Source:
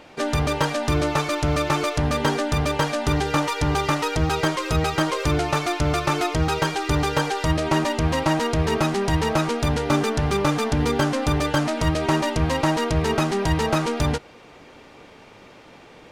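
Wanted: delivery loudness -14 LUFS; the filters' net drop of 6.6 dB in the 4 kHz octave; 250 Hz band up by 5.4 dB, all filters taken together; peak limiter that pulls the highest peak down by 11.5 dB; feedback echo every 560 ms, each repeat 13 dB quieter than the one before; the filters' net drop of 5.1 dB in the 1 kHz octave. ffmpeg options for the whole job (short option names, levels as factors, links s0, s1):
-af "equalizer=f=250:t=o:g=8,equalizer=f=1000:t=o:g=-6.5,equalizer=f=4000:t=o:g=-8.5,alimiter=limit=0.141:level=0:latency=1,aecho=1:1:560|1120|1680:0.224|0.0493|0.0108,volume=3.55"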